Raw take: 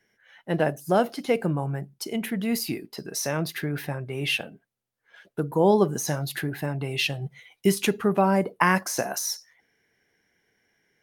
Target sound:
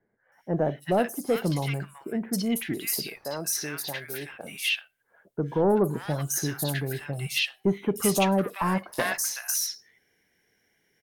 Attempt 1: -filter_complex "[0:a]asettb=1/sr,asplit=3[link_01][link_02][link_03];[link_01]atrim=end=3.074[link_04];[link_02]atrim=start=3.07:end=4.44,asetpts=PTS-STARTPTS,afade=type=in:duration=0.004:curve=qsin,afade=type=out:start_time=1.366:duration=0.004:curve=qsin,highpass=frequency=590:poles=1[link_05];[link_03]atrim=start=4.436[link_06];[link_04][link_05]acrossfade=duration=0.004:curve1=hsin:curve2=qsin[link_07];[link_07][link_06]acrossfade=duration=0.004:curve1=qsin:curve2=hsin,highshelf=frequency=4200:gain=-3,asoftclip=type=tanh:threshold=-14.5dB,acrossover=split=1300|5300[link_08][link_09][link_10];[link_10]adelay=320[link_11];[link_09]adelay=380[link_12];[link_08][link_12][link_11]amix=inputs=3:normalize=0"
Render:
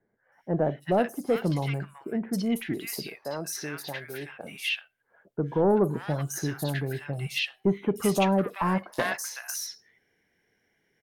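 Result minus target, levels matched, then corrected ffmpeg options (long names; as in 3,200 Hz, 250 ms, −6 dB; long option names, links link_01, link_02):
8,000 Hz band −6.0 dB
-filter_complex "[0:a]asettb=1/sr,asplit=3[link_01][link_02][link_03];[link_01]atrim=end=3.074[link_04];[link_02]atrim=start=3.07:end=4.44,asetpts=PTS-STARTPTS,afade=type=in:duration=0.004:curve=qsin,afade=type=out:start_time=1.366:duration=0.004:curve=qsin,highpass=frequency=590:poles=1[link_05];[link_03]atrim=start=4.436[link_06];[link_04][link_05]acrossfade=duration=0.004:curve1=hsin:curve2=qsin[link_07];[link_07][link_06]acrossfade=duration=0.004:curve1=qsin:curve2=hsin,highshelf=frequency=4200:gain=7,asoftclip=type=tanh:threshold=-14.5dB,acrossover=split=1300|5300[link_08][link_09][link_10];[link_10]adelay=320[link_11];[link_09]adelay=380[link_12];[link_08][link_12][link_11]amix=inputs=3:normalize=0"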